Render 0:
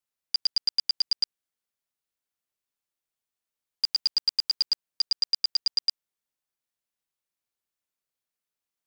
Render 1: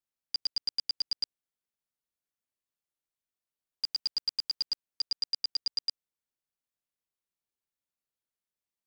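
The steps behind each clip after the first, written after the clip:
low-shelf EQ 490 Hz +5 dB
level −6.5 dB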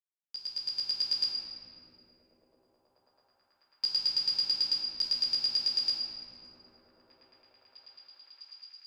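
fade in at the beginning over 1.18 s
echo through a band-pass that steps 653 ms, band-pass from 270 Hz, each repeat 0.7 octaves, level −4 dB
convolution reverb RT60 3.0 s, pre-delay 6 ms, DRR −3.5 dB

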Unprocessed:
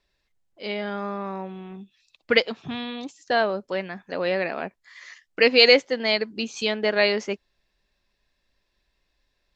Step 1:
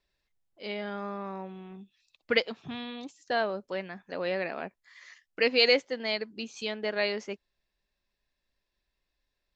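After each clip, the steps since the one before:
speech leveller within 3 dB 2 s
level −9 dB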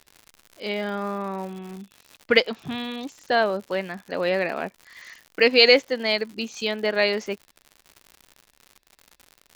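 surface crackle 130 per second −42 dBFS
level +7.5 dB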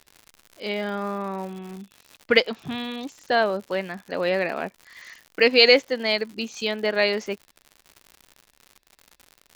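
floating-point word with a short mantissa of 8 bits

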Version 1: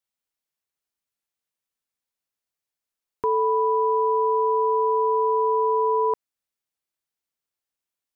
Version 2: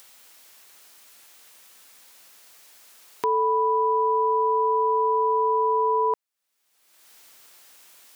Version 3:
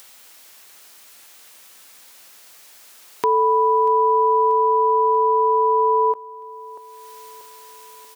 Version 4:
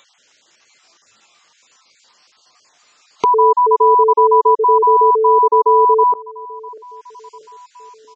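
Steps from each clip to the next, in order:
upward compression, threshold −26 dBFS; high-pass filter 500 Hz 6 dB per octave; level +1.5 dB
repeating echo 637 ms, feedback 56%, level −19 dB; every ending faded ahead of time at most 590 dB per second; level +5 dB
time-frequency cells dropped at random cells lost 25%; downsampling to 16,000 Hz; noise reduction from a noise print of the clip's start 10 dB; level +7 dB

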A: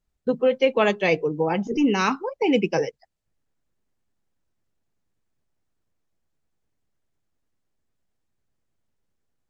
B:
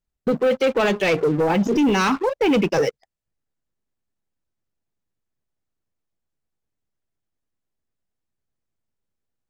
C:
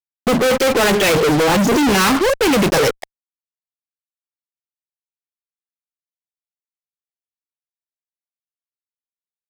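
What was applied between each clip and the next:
leveller curve on the samples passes 3; brickwall limiter −13.5 dBFS, peak gain reduction 8 dB
fuzz pedal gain 53 dB, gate −55 dBFS

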